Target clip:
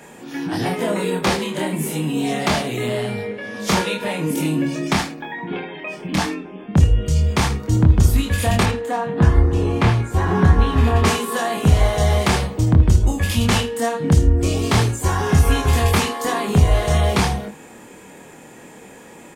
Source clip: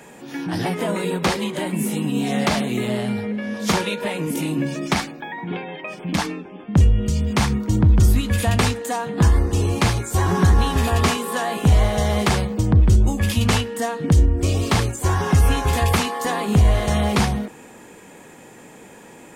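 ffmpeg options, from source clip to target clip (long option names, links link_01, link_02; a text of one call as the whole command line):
ffmpeg -i in.wav -filter_complex "[0:a]asettb=1/sr,asplit=3[link_01][link_02][link_03];[link_01]atrim=end=8.634[link_04];[link_02]atrim=start=8.63:end=11.05,asetpts=PTS-STARTPTS,afade=type=in:duration=0.004:curve=qsin,afade=type=out:start_time=2.416:duration=0.004:curve=qsin,bass=frequency=250:gain=1,treble=frequency=4000:gain=-14[link_05];[link_03]atrim=start=11.046[link_06];[link_04][link_05]acrossfade=duration=0.004:curve1=hsin:curve2=qsin[link_07];[link_07][link_06]acrossfade=duration=0.004:curve1=qsin:curve2=hsin,aecho=1:1:26|79:0.668|0.237" out.wav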